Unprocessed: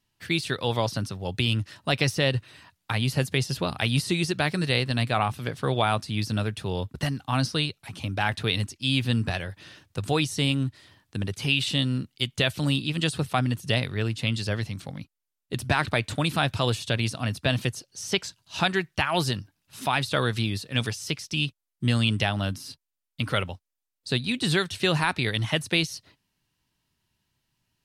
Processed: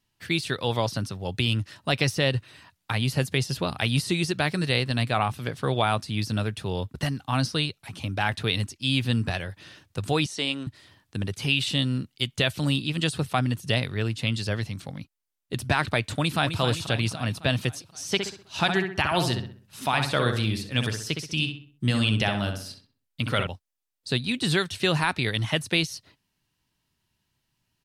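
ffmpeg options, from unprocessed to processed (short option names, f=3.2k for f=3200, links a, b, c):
-filter_complex "[0:a]asettb=1/sr,asplit=3[a][b][c];[a]atrim=end=10.264[d];[b]atrim=start=10.26:end=10.67,asetpts=PTS-STARTPTS,afade=t=in:d=0.004:c=qsin,afade=t=out:st=0.406:d=0.004:c=qsin,highpass=350,lowpass=7.3k[e];[c]atrim=start=10.666[f];[d][e]acrossfade=d=0.004:c1=hsin:c2=qsin[g];[g][f]acrossfade=d=0.004:c1=qsin:c2=hsin,asplit=2[h][i];[i]afade=t=in:st=16.18:d=0.01,afade=t=out:st=16.6:d=0.01,aecho=0:1:260|520|780|1040|1300|1560|1820|2080:0.375837|0.225502|0.135301|0.0811809|0.0487085|0.0292251|0.0175351|0.010521[j];[h][j]amix=inputs=2:normalize=0,asettb=1/sr,asplit=3[k][l][m];[k]atrim=end=18.044[n];[l]atrim=start=18.04:end=23.47,asetpts=PTS-STARTPTS,afade=t=in:d=0.004:c=qsin,afade=t=out:st=5.426:d=0.004:c=qsin,asplit=2[o][p];[p]adelay=64,lowpass=f=2.8k:p=1,volume=-5.5dB,asplit=2[q][r];[r]adelay=64,lowpass=f=2.8k:p=1,volume=0.42,asplit=2[s][t];[t]adelay=64,lowpass=f=2.8k:p=1,volume=0.42,asplit=2[u][v];[v]adelay=64,lowpass=f=2.8k:p=1,volume=0.42,asplit=2[w][x];[x]adelay=64,lowpass=f=2.8k:p=1,volume=0.42[y];[o][q][s][u][w][y]amix=inputs=6:normalize=0,atrim=end_sample=239463[z];[m]atrim=start=23.466[aa];[n][z]acrossfade=d=0.004:c1=hsin:c2=qsin[ab];[ab][aa]acrossfade=d=0.004:c1=qsin:c2=hsin"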